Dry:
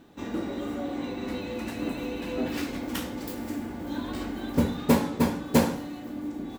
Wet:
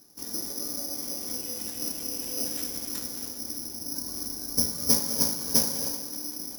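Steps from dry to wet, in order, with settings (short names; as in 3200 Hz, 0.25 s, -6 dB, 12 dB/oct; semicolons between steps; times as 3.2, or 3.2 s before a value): 3.3–4.58 bell 3000 Hz -5.5 dB 2.9 oct; thinning echo 0.191 s, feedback 79%, high-pass 230 Hz, level -15 dB; non-linear reverb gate 0.32 s rising, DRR 6.5 dB; careless resampling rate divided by 8×, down filtered, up zero stuff; gain -11 dB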